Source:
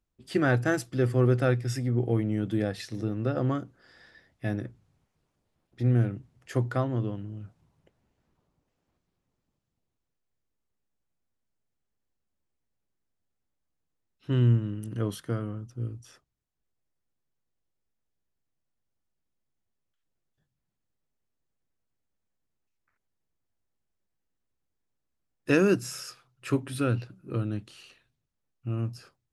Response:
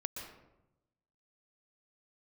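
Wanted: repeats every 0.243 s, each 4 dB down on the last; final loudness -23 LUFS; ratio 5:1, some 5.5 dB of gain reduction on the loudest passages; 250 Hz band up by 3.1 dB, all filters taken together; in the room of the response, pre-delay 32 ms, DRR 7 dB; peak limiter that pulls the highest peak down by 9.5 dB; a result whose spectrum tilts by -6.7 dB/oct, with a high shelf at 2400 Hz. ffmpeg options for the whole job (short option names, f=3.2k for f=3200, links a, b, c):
-filter_complex "[0:a]equalizer=f=250:t=o:g=4,highshelf=f=2.4k:g=5,acompressor=threshold=-22dB:ratio=5,alimiter=limit=-21.5dB:level=0:latency=1,aecho=1:1:243|486|729|972|1215|1458|1701|1944|2187:0.631|0.398|0.25|0.158|0.0994|0.0626|0.0394|0.0249|0.0157,asplit=2[a][b];[1:a]atrim=start_sample=2205,adelay=32[c];[b][c]afir=irnorm=-1:irlink=0,volume=-7dB[d];[a][d]amix=inputs=2:normalize=0,volume=7.5dB"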